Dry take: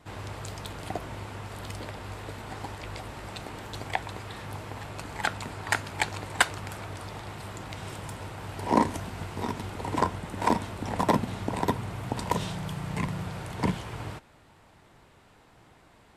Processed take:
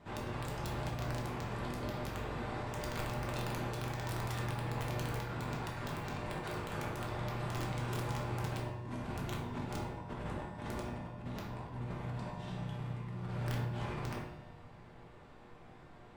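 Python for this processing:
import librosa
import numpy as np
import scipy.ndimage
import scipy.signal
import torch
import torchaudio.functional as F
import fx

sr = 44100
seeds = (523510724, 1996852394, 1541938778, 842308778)

y = fx.lowpass(x, sr, hz=2300.0, slope=6)
y = fx.over_compress(y, sr, threshold_db=-39.0, ratio=-1.0)
y = fx.comb_fb(y, sr, f0_hz=120.0, decay_s=1.7, harmonics='all', damping=0.0, mix_pct=80)
y = (np.mod(10.0 ** (38.0 / 20.0) * y + 1.0, 2.0) - 1.0) / 10.0 ** (38.0 / 20.0)
y = fx.room_shoebox(y, sr, seeds[0], volume_m3=220.0, walls='mixed', distance_m=1.2)
y = F.gain(torch.from_numpy(y), 5.5).numpy()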